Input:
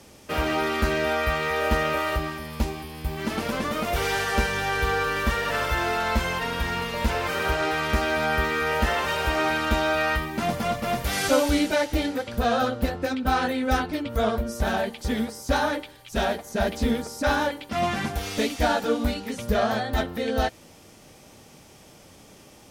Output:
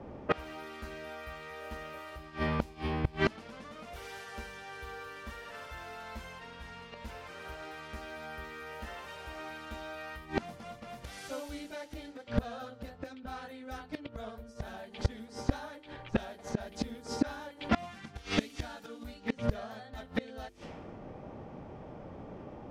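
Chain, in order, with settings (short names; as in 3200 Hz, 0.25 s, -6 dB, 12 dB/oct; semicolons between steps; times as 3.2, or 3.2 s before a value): notches 50/100/150/200/250/300/350/400/450 Hz; low-pass opened by the level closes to 870 Hz, open at -21.5 dBFS; 17.92–19.08 bell 630 Hz -5.5 dB 1.2 oct; flipped gate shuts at -21 dBFS, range -26 dB; gain +6.5 dB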